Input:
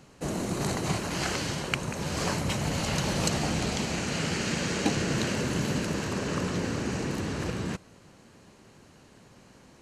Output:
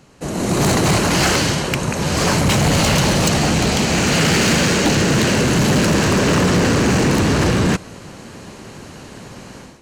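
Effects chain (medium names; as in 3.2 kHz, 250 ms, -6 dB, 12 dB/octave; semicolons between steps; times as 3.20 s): level rider gain up to 14 dB; hard clipper -16 dBFS, distortion -11 dB; trim +4.5 dB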